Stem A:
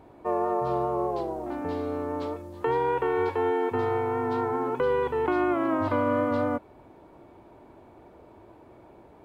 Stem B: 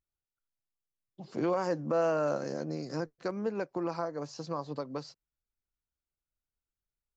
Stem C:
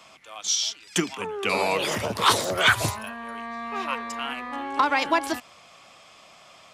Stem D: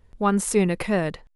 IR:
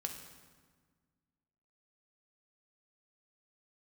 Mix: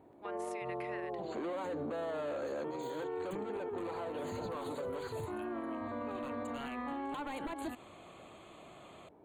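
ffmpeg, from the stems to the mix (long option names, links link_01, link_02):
-filter_complex "[0:a]highpass=frequency=250:poles=1,volume=-9.5dB[link_01];[1:a]asplit=2[link_02][link_03];[link_03]highpass=frequency=720:poles=1,volume=25dB,asoftclip=type=tanh:threshold=-20dB[link_04];[link_02][link_04]amix=inputs=2:normalize=0,lowpass=frequency=5800:poles=1,volume=-6dB,highpass=frequency=500:poles=1,volume=-4dB,asplit=2[link_05][link_06];[2:a]acompressor=threshold=-27dB:ratio=4,aeval=exprs='0.0531*(abs(mod(val(0)/0.0531+3,4)-2)-1)':channel_layout=same,adelay=2350,volume=-3dB[link_07];[3:a]highpass=frequency=2000:width_type=q:width=2.1,highshelf=frequency=4200:gain=-10.5,volume=-10dB[link_08];[link_06]apad=whole_len=400757[link_09];[link_07][link_09]sidechaincompress=threshold=-38dB:ratio=8:attack=6.3:release=408[link_10];[link_01][link_05][link_10]amix=inputs=3:normalize=0,asuperstop=centerf=5400:order=12:qfactor=2.8,alimiter=level_in=7.5dB:limit=-24dB:level=0:latency=1:release=106,volume=-7.5dB,volume=0dB[link_11];[link_08][link_11]amix=inputs=2:normalize=0,tiltshelf=frequency=860:gain=6.5,alimiter=level_in=7.5dB:limit=-24dB:level=0:latency=1:release=81,volume=-7.5dB"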